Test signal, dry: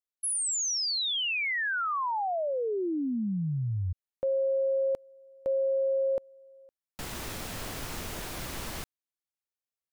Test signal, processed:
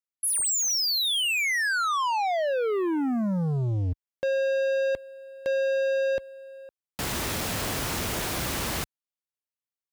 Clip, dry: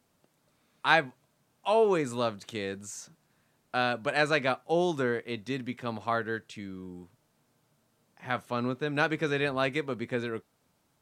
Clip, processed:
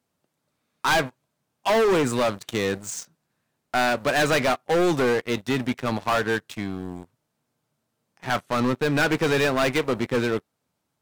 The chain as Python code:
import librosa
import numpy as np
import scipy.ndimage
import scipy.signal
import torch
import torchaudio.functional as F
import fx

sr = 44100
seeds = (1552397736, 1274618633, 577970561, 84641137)

y = scipy.signal.sosfilt(scipy.signal.butter(2, 49.0, 'highpass', fs=sr, output='sos'), x)
y = fx.leveller(y, sr, passes=3)
y = np.clip(10.0 ** (17.5 / 20.0) * y, -1.0, 1.0) / 10.0 ** (17.5 / 20.0)